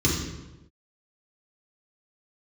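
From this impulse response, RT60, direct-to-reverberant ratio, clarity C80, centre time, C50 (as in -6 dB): 1.0 s, -5.5 dB, 5.5 dB, 52 ms, 3.0 dB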